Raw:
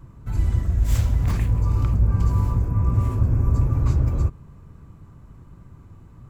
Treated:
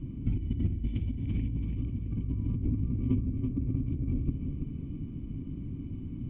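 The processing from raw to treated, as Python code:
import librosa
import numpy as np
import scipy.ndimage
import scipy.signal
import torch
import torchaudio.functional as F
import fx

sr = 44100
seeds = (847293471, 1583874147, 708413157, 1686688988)

p1 = fx.over_compress(x, sr, threshold_db=-28.0, ratio=-1.0)
p2 = fx.formant_cascade(p1, sr, vowel='i')
p3 = p2 + fx.echo_feedback(p2, sr, ms=333, feedback_pct=39, wet_db=-6.5, dry=0)
y = F.gain(torch.from_numpy(p3), 8.5).numpy()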